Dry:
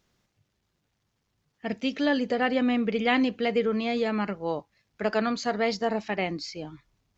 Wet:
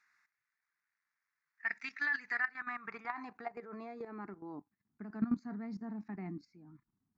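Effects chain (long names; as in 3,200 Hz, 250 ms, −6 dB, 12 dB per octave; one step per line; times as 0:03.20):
band-pass filter sweep 1,900 Hz → 230 Hz, 0:02.30–0:04.83
output level in coarse steps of 14 dB
phaser with its sweep stopped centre 1,300 Hz, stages 4
0:02.44–0:05.16: downward compressor 8 to 1, threshold −46 dBFS, peak gain reduction 14.5 dB
tilt shelving filter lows −6 dB, about 660 Hz
level +8 dB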